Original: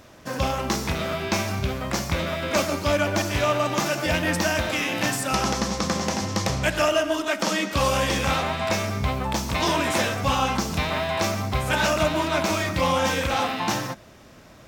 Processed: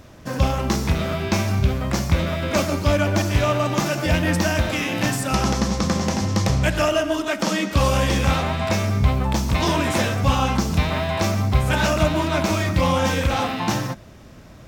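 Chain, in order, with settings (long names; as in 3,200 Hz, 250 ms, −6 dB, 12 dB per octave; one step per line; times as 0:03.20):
low-shelf EQ 230 Hz +10 dB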